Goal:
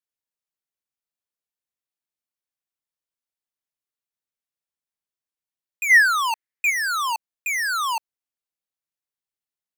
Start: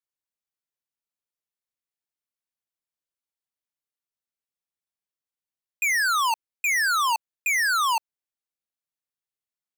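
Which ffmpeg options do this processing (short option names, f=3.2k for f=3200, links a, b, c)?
-filter_complex "[0:a]asplit=3[a][b][c];[a]afade=t=out:st=5.89:d=0.02[d];[b]equalizer=f=1.9k:t=o:w=0.52:g=14,afade=t=in:st=5.89:d=0.02,afade=t=out:st=6.69:d=0.02[e];[c]afade=t=in:st=6.69:d=0.02[f];[d][e][f]amix=inputs=3:normalize=0,volume=-1.5dB"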